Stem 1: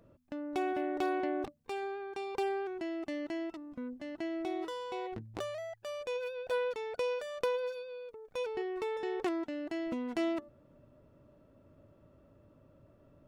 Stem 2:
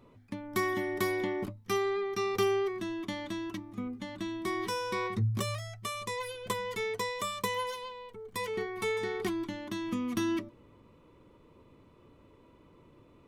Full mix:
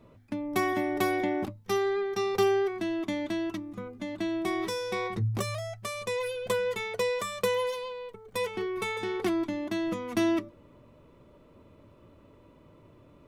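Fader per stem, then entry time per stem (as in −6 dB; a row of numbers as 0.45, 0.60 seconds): +2.0, +0.5 decibels; 0.00, 0.00 seconds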